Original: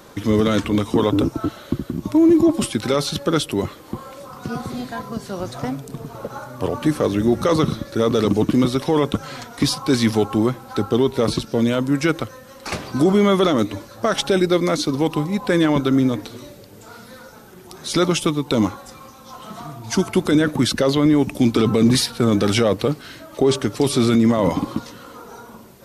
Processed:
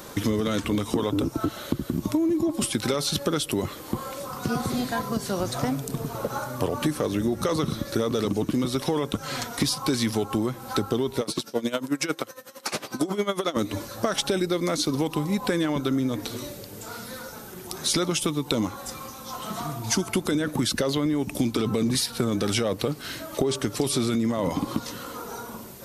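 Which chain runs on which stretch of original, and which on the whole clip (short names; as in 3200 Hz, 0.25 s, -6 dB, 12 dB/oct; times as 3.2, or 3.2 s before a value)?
11.21–13.57 Bessel high-pass 280 Hz + dB-linear tremolo 11 Hz, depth 18 dB
whole clip: high shelf 5600 Hz +8 dB; compressor 10:1, threshold -23 dBFS; gain +2 dB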